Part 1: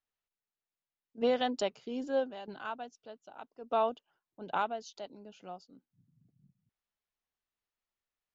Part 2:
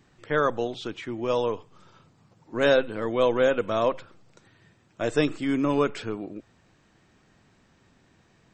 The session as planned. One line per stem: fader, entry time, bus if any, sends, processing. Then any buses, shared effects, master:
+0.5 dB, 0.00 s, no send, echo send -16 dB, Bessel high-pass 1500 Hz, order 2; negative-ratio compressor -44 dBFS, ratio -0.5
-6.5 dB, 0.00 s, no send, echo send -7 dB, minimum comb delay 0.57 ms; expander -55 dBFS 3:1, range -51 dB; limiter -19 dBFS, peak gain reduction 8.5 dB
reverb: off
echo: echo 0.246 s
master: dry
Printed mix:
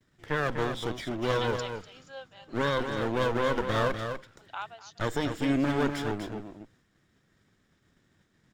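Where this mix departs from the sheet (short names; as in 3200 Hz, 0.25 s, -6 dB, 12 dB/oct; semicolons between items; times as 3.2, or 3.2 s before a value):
stem 1: missing negative-ratio compressor -44 dBFS, ratio -0.5; stem 2 -6.5 dB -> +0.5 dB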